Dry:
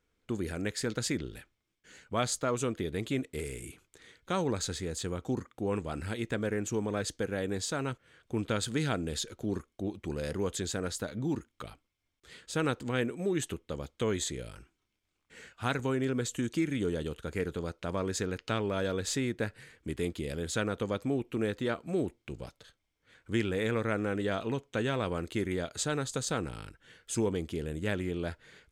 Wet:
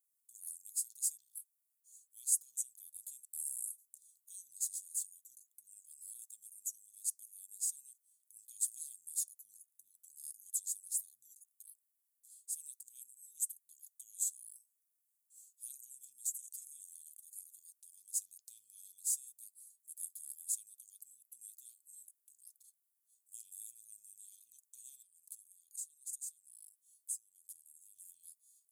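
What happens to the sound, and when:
25.02–27.96 s: compression 8:1, threshold -39 dBFS
whole clip: inverse Chebyshev high-pass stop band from 1.9 kHz, stop band 80 dB; comb 1.2 ms, depth 38%; trim +13 dB

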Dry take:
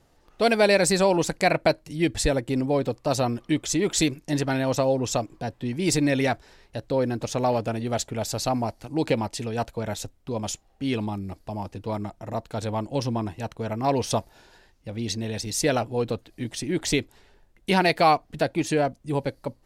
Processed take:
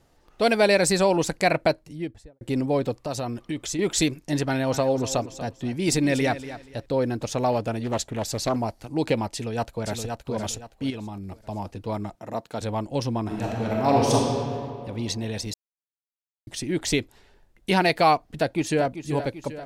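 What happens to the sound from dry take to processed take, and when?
1.56–2.41 s: studio fade out
2.97–3.79 s: compression 2.5:1, threshold -28 dBFS
4.45–6.86 s: feedback delay 239 ms, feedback 24%, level -13.5 dB
7.83–8.56 s: loudspeaker Doppler distortion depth 0.47 ms
9.33–10.17 s: echo throw 520 ms, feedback 30%, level -5 dB
10.90–11.45 s: compression 4:1, threshold -32 dBFS
12.15–12.61 s: high-pass 160 Hz
13.21–14.14 s: reverb throw, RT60 2.4 s, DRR -3.5 dB
15.54–16.47 s: mute
18.22–18.87 s: echo throw 390 ms, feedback 60%, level -11 dB

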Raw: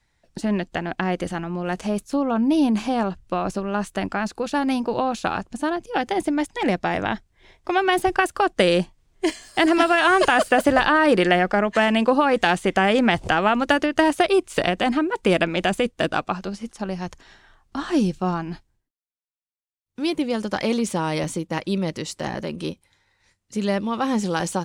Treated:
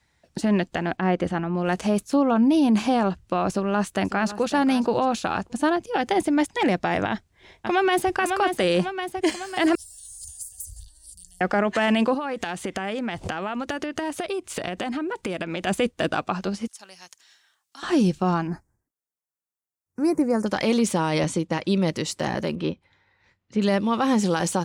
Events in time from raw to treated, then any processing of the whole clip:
0.97–1.57 s: low-pass 2.1 kHz 6 dB/octave
3.47–4.50 s: echo throw 550 ms, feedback 15%, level -15 dB
7.09–8.10 s: echo throw 550 ms, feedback 60%, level -8.5 dB
9.75–11.41 s: inverse Chebyshev band-stop 220–2500 Hz, stop band 60 dB
12.14–15.67 s: compression 12:1, threshold -27 dBFS
16.67–17.83 s: differentiator
18.47–20.46 s: Butterworth band-stop 3.3 kHz, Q 0.75
21.09–21.82 s: low-pass 8.6 kHz
22.55–23.62 s: low-pass 3 kHz
whole clip: peak limiter -15 dBFS; high-pass 53 Hz; trim +2.5 dB

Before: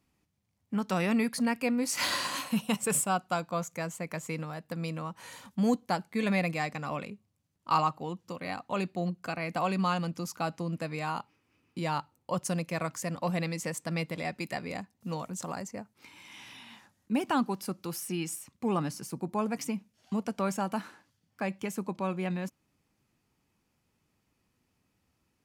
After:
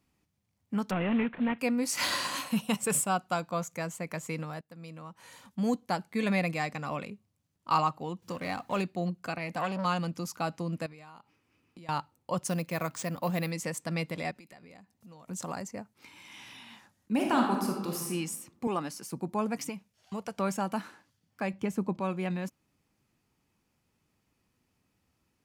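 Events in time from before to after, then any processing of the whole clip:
0.91–1.59 s: CVSD coder 16 kbps
4.61–6.10 s: fade in, from -16 dB
8.22–8.82 s: companding laws mixed up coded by mu
9.38–9.85 s: transformer saturation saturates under 950 Hz
10.86–11.89 s: compression 8:1, threshold -47 dBFS
12.48–13.51 s: careless resampling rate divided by 3×, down none, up hold
14.31–15.28 s: compression 5:1, threshold -51 dBFS
17.14–18.10 s: reverb throw, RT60 1.1 s, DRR 0 dB
18.67–19.12 s: Bessel high-pass 300 Hz
19.69–20.38 s: peaking EQ 250 Hz -11 dB
21.53–22.00 s: tilt EQ -2 dB/octave

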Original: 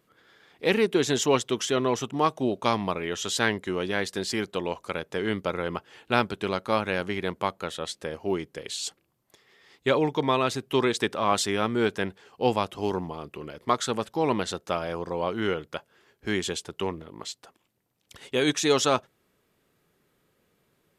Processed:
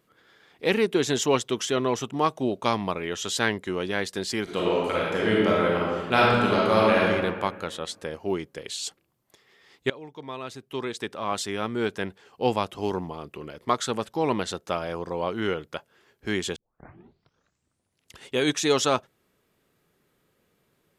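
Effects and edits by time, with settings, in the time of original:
4.43–7.09 s: reverb throw, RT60 1.6 s, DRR -5.5 dB
9.90–12.53 s: fade in linear, from -21.5 dB
16.56 s: tape start 1.71 s

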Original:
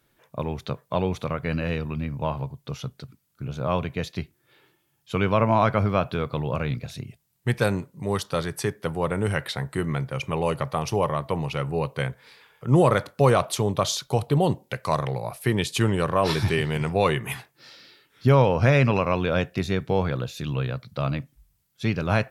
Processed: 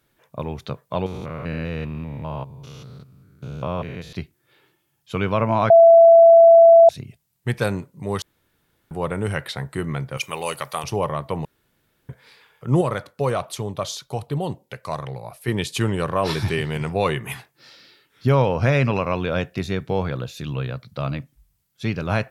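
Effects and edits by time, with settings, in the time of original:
1.06–4.13 s: spectrogram pixelated in time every 200 ms
5.70–6.89 s: bleep 668 Hz -6 dBFS
8.22–8.91 s: room tone
10.17–10.84 s: tilt EQ +4 dB/octave
11.45–12.09 s: room tone
12.81–15.48 s: flange 1.3 Hz, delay 0.4 ms, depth 2 ms, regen +78%

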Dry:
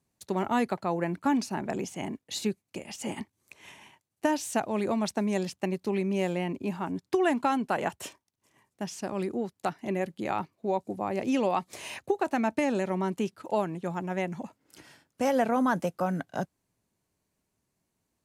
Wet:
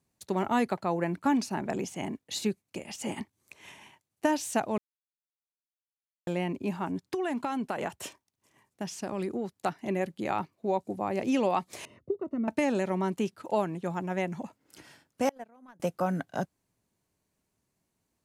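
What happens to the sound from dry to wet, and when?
4.78–6.27 s: mute
6.95–9.53 s: compression 5:1, threshold -27 dBFS
11.85–12.48 s: boxcar filter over 54 samples
15.29–15.80 s: gate -21 dBFS, range -32 dB

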